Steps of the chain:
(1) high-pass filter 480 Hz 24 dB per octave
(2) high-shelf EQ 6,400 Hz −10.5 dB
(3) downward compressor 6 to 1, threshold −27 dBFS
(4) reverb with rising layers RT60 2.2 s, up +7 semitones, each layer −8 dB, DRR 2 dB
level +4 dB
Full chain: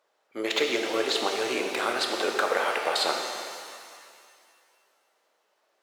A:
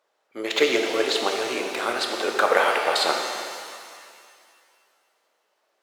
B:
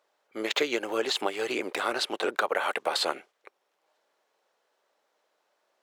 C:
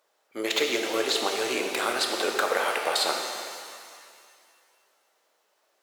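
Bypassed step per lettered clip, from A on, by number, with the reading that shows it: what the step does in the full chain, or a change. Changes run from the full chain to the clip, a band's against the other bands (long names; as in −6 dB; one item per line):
3, average gain reduction 2.5 dB
4, change in momentary loudness spread −10 LU
2, 8 kHz band +4.0 dB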